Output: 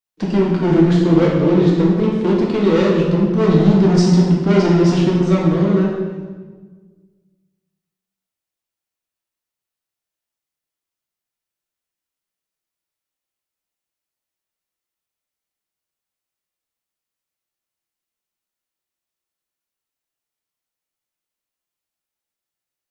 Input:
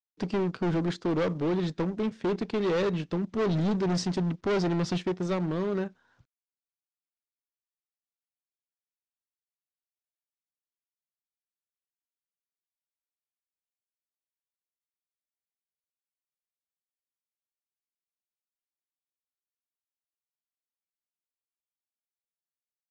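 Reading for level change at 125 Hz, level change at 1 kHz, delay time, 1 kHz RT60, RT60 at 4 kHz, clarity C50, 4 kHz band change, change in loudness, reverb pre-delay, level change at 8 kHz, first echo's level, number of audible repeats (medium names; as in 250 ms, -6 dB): +15.5 dB, +10.5 dB, no echo, 1.3 s, 1.0 s, 1.0 dB, +9.5 dB, +14.0 dB, 5 ms, +9.0 dB, no echo, no echo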